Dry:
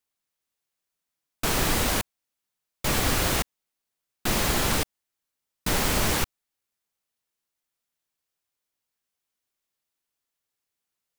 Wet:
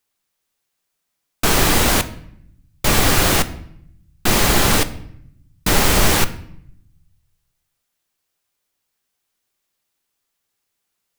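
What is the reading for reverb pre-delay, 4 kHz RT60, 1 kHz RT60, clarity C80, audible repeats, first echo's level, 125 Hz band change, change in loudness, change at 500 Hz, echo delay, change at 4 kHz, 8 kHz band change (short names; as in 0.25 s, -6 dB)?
3 ms, 0.55 s, 0.65 s, 18.5 dB, none, none, +9.0 dB, +8.5 dB, +9.0 dB, none, +9.0 dB, +8.5 dB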